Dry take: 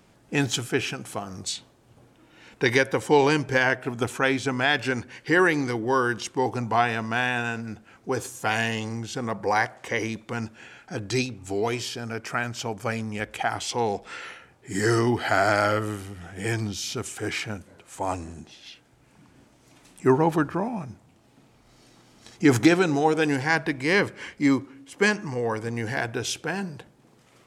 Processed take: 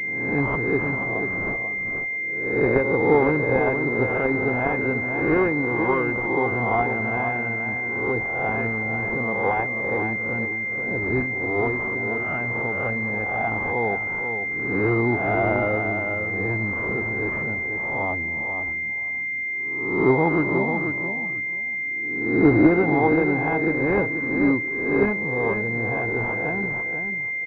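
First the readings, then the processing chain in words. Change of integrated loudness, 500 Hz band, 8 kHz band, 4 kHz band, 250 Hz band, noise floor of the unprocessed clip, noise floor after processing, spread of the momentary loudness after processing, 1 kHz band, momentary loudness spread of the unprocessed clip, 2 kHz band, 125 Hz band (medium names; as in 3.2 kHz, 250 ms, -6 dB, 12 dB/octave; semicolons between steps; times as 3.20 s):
+3.0 dB, +3.0 dB, under -25 dB, under -20 dB, +3.0 dB, -58 dBFS, -28 dBFS, 6 LU, +0.5 dB, 14 LU, +5.5 dB, +2.0 dB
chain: reverse spectral sustain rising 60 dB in 0.89 s; feedback delay 487 ms, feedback 18%, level -7 dB; class-D stage that switches slowly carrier 2.1 kHz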